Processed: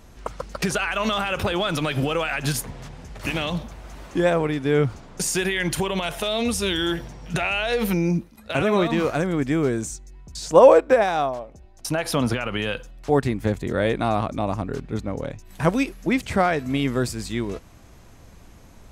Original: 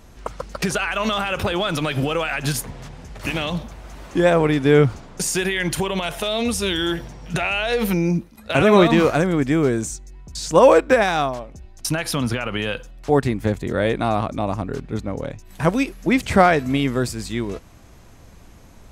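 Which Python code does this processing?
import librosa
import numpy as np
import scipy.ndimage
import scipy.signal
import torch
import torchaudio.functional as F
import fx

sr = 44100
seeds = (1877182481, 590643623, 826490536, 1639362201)

y = fx.peak_eq(x, sr, hz=610.0, db=7.5, octaves=1.7, at=(10.42, 12.34))
y = fx.rider(y, sr, range_db=3, speed_s=0.5)
y = y * librosa.db_to_amplitude(-4.5)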